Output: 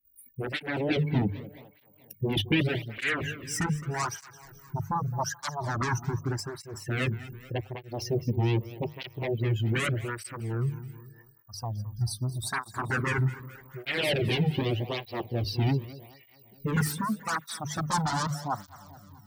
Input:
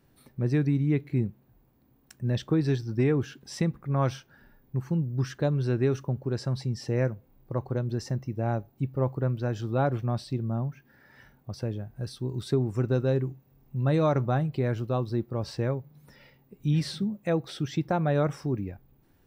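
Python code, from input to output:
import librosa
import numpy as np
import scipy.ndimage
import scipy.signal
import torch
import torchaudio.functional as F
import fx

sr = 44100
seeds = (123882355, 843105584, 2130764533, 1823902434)

p1 = fx.bin_expand(x, sr, power=2.0)
p2 = fx.hum_notches(p1, sr, base_hz=50, count=3)
p3 = fx.fold_sine(p2, sr, drive_db=20, ceiling_db=-16.5)
p4 = p2 + F.gain(torch.from_numpy(p3), -6.0).numpy()
p5 = fx.phaser_stages(p4, sr, stages=4, low_hz=410.0, high_hz=1400.0, hz=0.15, feedback_pct=25)
p6 = p5 + fx.echo_feedback(p5, sr, ms=215, feedback_pct=56, wet_db=-16.0, dry=0)
p7 = fx.flanger_cancel(p6, sr, hz=0.83, depth_ms=1.9)
y = F.gain(torch.from_numpy(p7), 3.0).numpy()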